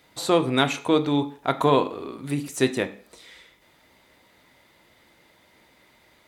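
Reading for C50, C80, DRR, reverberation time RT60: 16.0 dB, 20.0 dB, 9.0 dB, 0.45 s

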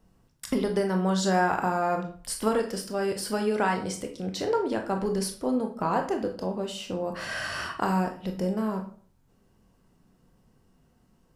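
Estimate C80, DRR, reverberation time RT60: 14.0 dB, 3.5 dB, 0.50 s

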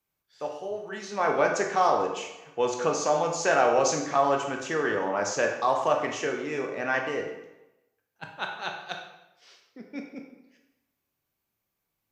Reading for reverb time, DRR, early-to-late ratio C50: 0.95 s, 2.0 dB, 5.0 dB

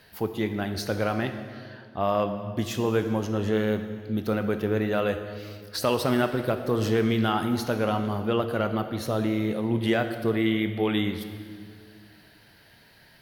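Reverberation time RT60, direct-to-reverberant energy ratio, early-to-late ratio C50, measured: 2.0 s, 7.0 dB, 8.5 dB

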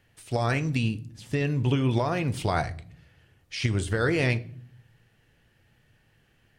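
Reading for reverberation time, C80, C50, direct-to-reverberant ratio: 0.55 s, 22.5 dB, 18.5 dB, 11.0 dB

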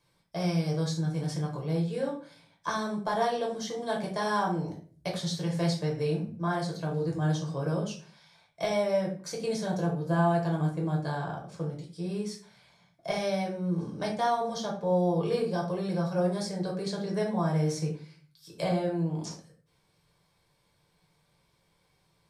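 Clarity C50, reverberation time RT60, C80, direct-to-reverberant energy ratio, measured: 7.5 dB, 0.40 s, 12.0 dB, -2.0 dB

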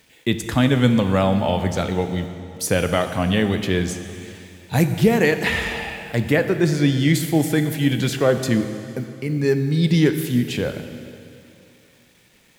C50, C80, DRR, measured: 9.0 dB, 9.5 dB, 7.5 dB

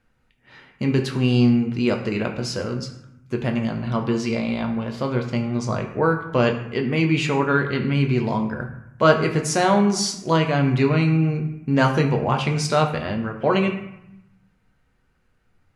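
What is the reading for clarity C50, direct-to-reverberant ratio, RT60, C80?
8.0 dB, 3.0 dB, 0.85 s, 10.5 dB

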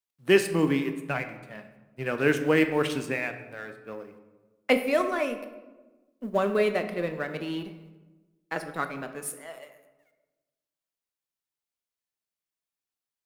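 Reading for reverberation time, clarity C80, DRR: 1.2 s, 12.0 dB, 8.0 dB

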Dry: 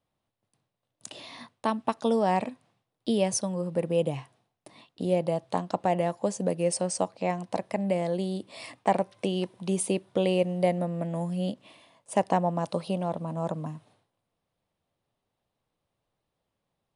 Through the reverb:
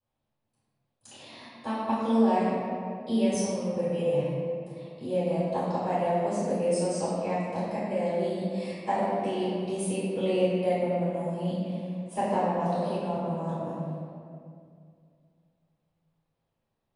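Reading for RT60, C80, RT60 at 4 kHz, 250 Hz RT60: 2.3 s, -1.0 dB, 1.3 s, 2.8 s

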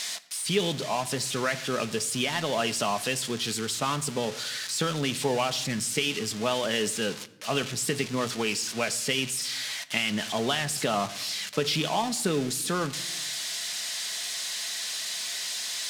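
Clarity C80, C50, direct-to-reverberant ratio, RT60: 19.5 dB, 18.0 dB, 9.5 dB, 0.90 s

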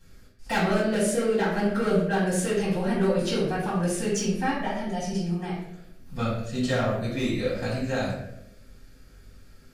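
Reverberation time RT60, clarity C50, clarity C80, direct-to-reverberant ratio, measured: 0.85 s, 2.0 dB, 5.0 dB, -9.0 dB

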